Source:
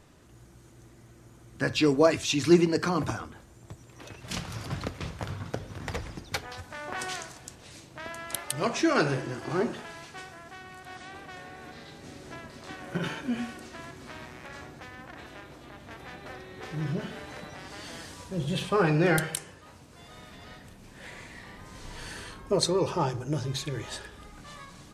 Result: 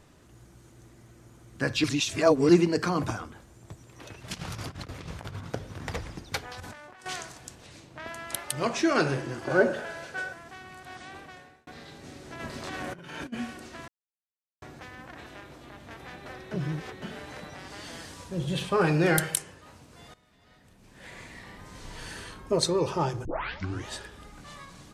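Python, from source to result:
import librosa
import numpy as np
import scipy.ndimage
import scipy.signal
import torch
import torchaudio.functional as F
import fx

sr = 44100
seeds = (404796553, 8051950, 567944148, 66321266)

y = fx.over_compress(x, sr, threshold_db=-38.0, ratio=-0.5, at=(4.34, 5.44))
y = fx.over_compress(y, sr, threshold_db=-47.0, ratio=-1.0, at=(6.6, 7.06))
y = fx.high_shelf(y, sr, hz=5900.0, db=-8.0, at=(7.66, 8.07))
y = fx.small_body(y, sr, hz=(560.0, 1500.0), ring_ms=30, db=16, at=(9.47, 10.33))
y = fx.over_compress(y, sr, threshold_db=-42.0, ratio=-1.0, at=(12.39, 13.32), fade=0.02)
y = fx.high_shelf(y, sr, hz=6900.0, db=9.0, at=(18.81, 19.42))
y = fx.edit(y, sr, fx.reverse_span(start_s=1.84, length_s=0.65),
    fx.fade_out_span(start_s=11.17, length_s=0.5),
    fx.silence(start_s=13.88, length_s=0.74),
    fx.reverse_span(start_s=16.51, length_s=0.51),
    fx.fade_in_from(start_s=20.14, length_s=1.06, curve='qua', floor_db=-17.0),
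    fx.tape_start(start_s=23.25, length_s=0.62), tone=tone)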